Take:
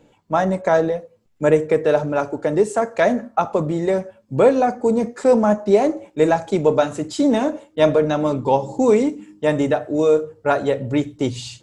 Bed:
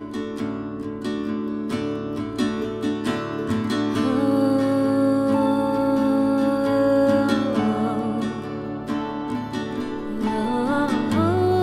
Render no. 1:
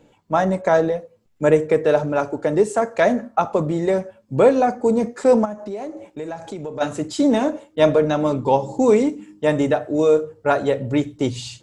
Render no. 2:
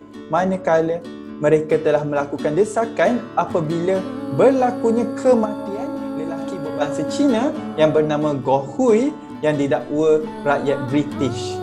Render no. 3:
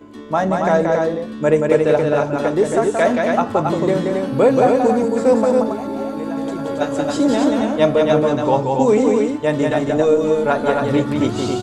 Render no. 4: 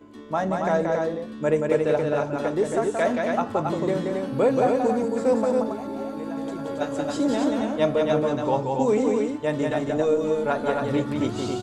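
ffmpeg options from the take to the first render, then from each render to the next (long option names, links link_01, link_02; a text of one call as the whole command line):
ffmpeg -i in.wav -filter_complex "[0:a]asplit=3[link_01][link_02][link_03];[link_01]afade=type=out:start_time=5.44:duration=0.02[link_04];[link_02]acompressor=threshold=-29dB:ratio=4:attack=3.2:release=140:knee=1:detection=peak,afade=type=in:start_time=5.44:duration=0.02,afade=type=out:start_time=6.8:duration=0.02[link_05];[link_03]afade=type=in:start_time=6.8:duration=0.02[link_06];[link_04][link_05][link_06]amix=inputs=3:normalize=0" out.wav
ffmpeg -i in.wav -i bed.wav -filter_complex "[1:a]volume=-7.5dB[link_01];[0:a][link_01]amix=inputs=2:normalize=0" out.wav
ffmpeg -i in.wav -af "aecho=1:1:177.8|274.1:0.631|0.631" out.wav
ffmpeg -i in.wav -af "volume=-7dB" out.wav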